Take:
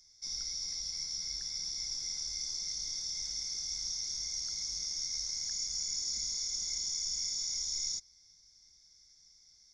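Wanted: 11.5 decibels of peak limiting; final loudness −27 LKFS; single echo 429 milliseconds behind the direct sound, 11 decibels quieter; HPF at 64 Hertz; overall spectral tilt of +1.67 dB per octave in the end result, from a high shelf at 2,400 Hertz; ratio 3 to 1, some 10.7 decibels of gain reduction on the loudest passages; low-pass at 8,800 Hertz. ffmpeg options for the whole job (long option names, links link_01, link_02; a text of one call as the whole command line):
ffmpeg -i in.wav -af "highpass=64,lowpass=8800,highshelf=frequency=2400:gain=-4.5,acompressor=threshold=-52dB:ratio=3,alimiter=level_in=26dB:limit=-24dB:level=0:latency=1,volume=-26dB,aecho=1:1:429:0.282,volume=28.5dB" out.wav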